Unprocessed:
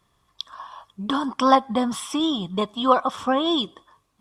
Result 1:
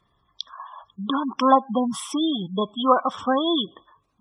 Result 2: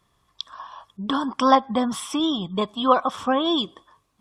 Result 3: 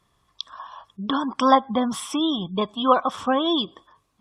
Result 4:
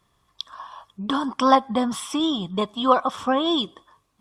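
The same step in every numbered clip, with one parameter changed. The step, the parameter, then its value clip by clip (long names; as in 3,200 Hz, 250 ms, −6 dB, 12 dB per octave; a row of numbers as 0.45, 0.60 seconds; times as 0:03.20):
gate on every frequency bin, under each frame's peak: −20, −45, −35, −60 decibels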